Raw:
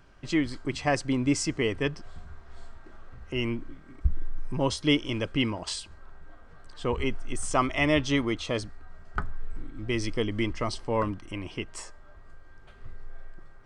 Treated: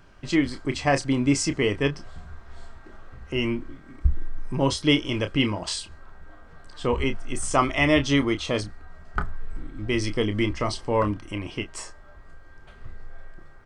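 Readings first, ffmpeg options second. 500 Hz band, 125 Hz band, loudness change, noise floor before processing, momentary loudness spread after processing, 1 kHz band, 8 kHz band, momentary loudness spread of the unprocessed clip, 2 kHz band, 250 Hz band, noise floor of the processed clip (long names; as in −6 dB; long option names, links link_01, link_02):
+4.0 dB, +4.0 dB, +4.0 dB, −50 dBFS, 17 LU, +4.0 dB, +4.0 dB, 17 LU, +4.0 dB, +4.0 dB, −48 dBFS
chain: -filter_complex "[0:a]asplit=2[link_01][link_02];[link_02]adelay=29,volume=-9.5dB[link_03];[link_01][link_03]amix=inputs=2:normalize=0,volume=3.5dB"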